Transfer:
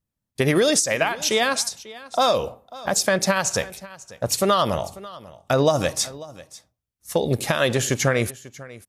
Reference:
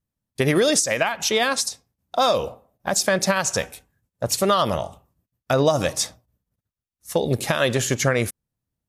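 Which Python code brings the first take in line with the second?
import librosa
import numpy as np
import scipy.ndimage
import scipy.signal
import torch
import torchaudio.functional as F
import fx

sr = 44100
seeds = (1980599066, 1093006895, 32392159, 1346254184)

y = fx.fix_echo_inverse(x, sr, delay_ms=543, level_db=-19.0)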